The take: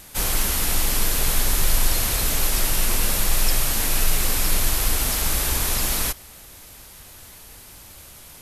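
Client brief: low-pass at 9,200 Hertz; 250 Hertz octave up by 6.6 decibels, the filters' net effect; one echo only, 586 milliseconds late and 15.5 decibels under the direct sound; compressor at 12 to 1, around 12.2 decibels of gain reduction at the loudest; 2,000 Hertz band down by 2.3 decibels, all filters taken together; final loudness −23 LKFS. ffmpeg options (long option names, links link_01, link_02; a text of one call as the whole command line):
ffmpeg -i in.wav -af "lowpass=9200,equalizer=frequency=250:width_type=o:gain=8.5,equalizer=frequency=2000:width_type=o:gain=-3,acompressor=threshold=-26dB:ratio=12,aecho=1:1:586:0.168,volume=10dB" out.wav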